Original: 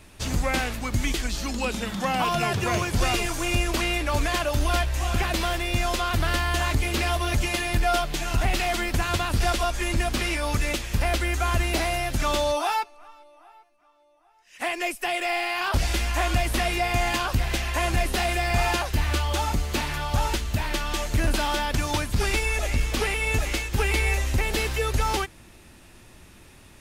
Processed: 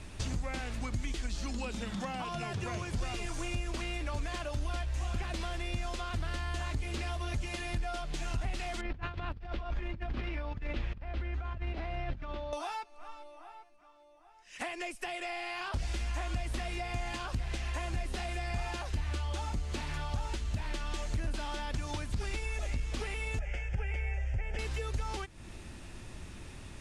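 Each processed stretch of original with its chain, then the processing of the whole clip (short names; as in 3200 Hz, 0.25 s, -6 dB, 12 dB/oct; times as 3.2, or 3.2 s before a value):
8.81–12.53 air absorption 340 m + negative-ratio compressor -31 dBFS, ratio -0.5
23.39–24.59 LPF 4100 Hz + fixed phaser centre 1100 Hz, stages 6
whole clip: LPF 9600 Hz 24 dB/oct; compressor, threshold -37 dBFS; low shelf 180 Hz +6.5 dB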